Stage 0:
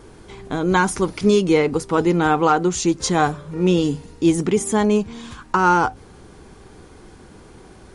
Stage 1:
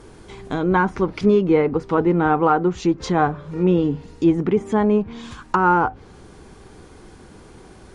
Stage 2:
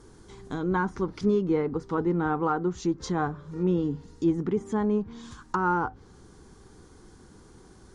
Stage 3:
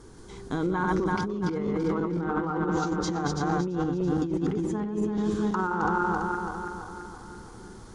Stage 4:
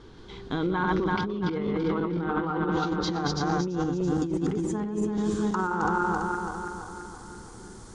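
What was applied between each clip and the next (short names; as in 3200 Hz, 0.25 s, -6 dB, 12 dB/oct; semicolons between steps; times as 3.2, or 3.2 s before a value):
treble ducked by the level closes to 1700 Hz, closed at -15.5 dBFS
fifteen-band EQ 630 Hz -7 dB, 2500 Hz -9 dB, 6300 Hz +4 dB; gain -7 dB
regenerating reverse delay 0.167 s, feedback 72%, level -3 dB; negative-ratio compressor -27 dBFS, ratio -1
low-pass sweep 3500 Hz -> 8500 Hz, 2.83–4.3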